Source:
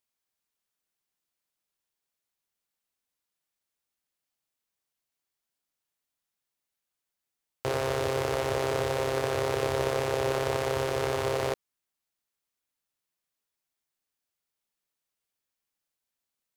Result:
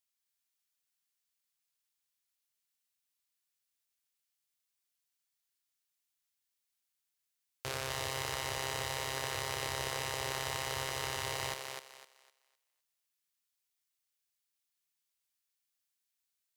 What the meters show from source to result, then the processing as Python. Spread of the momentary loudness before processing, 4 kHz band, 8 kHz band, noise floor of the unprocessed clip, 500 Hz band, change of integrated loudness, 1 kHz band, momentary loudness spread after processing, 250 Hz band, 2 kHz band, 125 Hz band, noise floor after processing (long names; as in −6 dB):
3 LU, +0.5 dB, +1.5 dB, below −85 dBFS, −15.0 dB, −7.5 dB, −7.0 dB, 6 LU, −14.0 dB, −3.0 dB, −9.5 dB, −85 dBFS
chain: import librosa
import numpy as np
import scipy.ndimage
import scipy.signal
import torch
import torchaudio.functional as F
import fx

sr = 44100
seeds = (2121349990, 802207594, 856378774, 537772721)

y = fx.tone_stack(x, sr, knobs='5-5-5')
y = fx.echo_thinned(y, sr, ms=254, feedback_pct=28, hz=350.0, wet_db=-4.5)
y = F.gain(torch.from_numpy(y), 6.0).numpy()